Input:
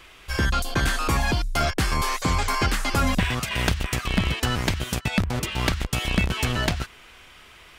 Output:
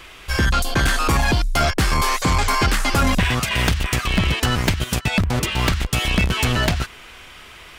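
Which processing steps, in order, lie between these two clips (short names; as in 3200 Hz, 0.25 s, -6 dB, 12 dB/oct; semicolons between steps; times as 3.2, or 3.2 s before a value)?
4.44–4.92 transient shaper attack +5 dB, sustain -5 dB; soft clip -18 dBFS, distortion -15 dB; gain +7 dB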